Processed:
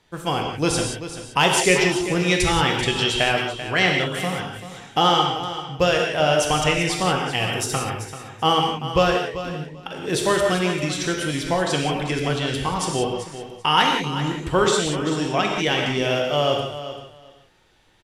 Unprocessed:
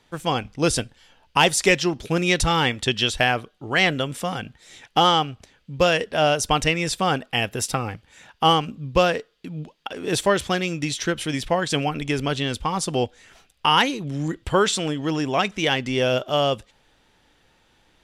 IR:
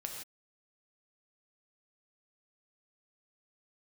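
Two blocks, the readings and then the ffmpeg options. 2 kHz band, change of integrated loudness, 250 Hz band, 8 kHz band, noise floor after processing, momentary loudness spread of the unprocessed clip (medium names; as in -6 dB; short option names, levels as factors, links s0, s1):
+1.0 dB, +1.0 dB, +1.0 dB, +1.5 dB, -47 dBFS, 11 LU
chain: -filter_complex "[0:a]aecho=1:1:388|776:0.251|0.0427[s0];[1:a]atrim=start_sample=2205,atrim=end_sample=6174,asetrate=32193,aresample=44100[s1];[s0][s1]afir=irnorm=-1:irlink=0"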